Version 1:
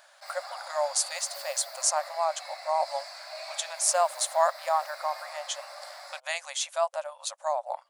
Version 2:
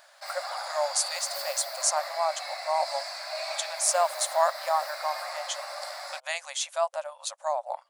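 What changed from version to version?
background +6.0 dB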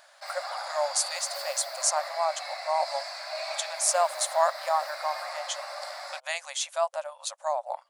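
background: add high shelf 8700 Hz -7.5 dB

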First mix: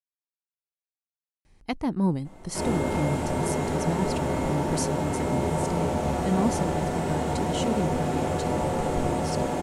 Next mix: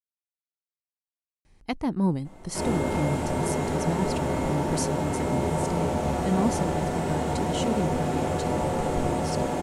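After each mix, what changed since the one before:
none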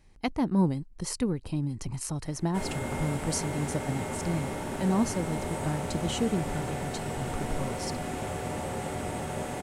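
speech: entry -1.45 s; background: send -11.0 dB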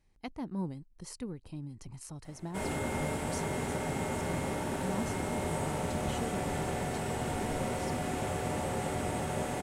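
speech -11.5 dB

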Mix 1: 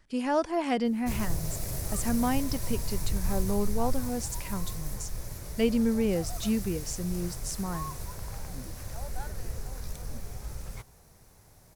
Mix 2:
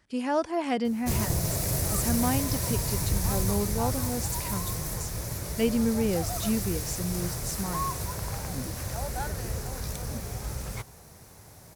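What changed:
background +8.0 dB; master: add HPF 63 Hz 12 dB/oct

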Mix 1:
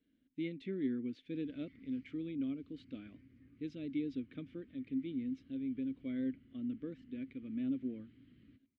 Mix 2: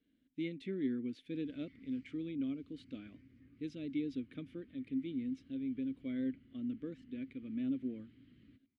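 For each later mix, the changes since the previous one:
master: remove air absorption 86 m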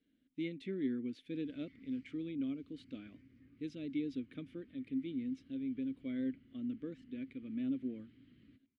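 master: add bell 64 Hz -2.5 dB 2.2 oct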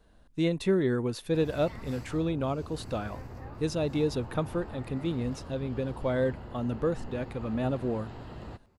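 background: remove EQ curve 120 Hz 0 dB, 710 Hz -17 dB, 1100 Hz -6 dB; master: remove vowel filter i

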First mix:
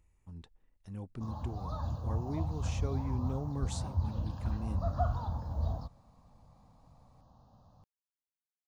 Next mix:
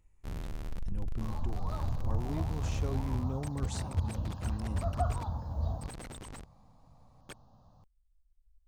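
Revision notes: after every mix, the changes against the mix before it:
first sound: unmuted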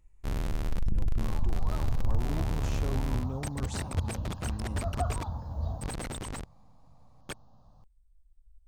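first sound +8.0 dB

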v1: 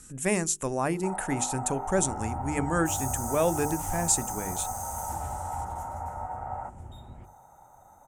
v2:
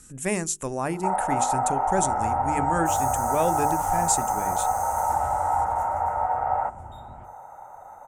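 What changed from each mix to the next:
first sound +11.5 dB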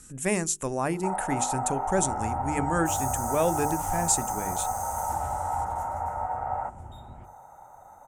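first sound -6.0 dB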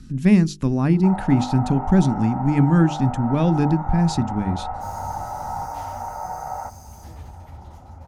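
speech: add resonant low shelf 350 Hz +13.5 dB, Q 1.5; second sound: entry +1.95 s; master: add resonant high shelf 6000 Hz -11 dB, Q 3

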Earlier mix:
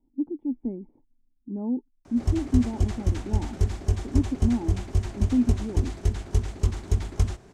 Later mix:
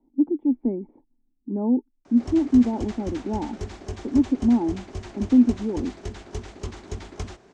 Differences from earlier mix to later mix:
speech +9.0 dB; master: add three-band isolator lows -12 dB, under 210 Hz, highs -23 dB, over 7600 Hz

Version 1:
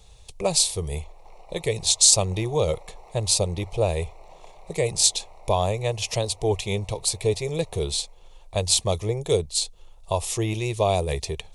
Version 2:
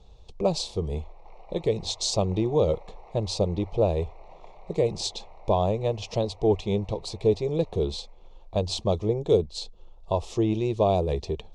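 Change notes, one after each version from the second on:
speech: add graphic EQ 125/250/2000 Hz -4/+9/-11 dB; master: add air absorption 190 m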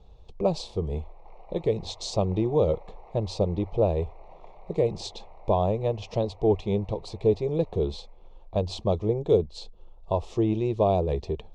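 master: add high shelf 3900 Hz -12 dB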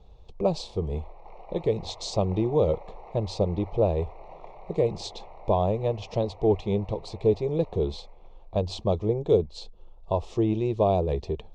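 background +5.0 dB; master: add LPF 10000 Hz

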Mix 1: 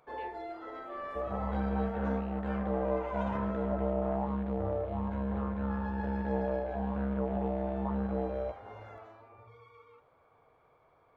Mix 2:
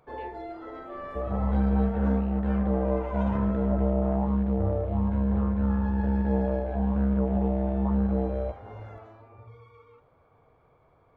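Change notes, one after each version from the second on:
master: add low shelf 320 Hz +11.5 dB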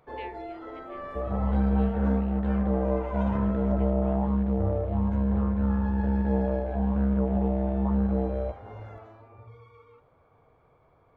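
speech +10.5 dB

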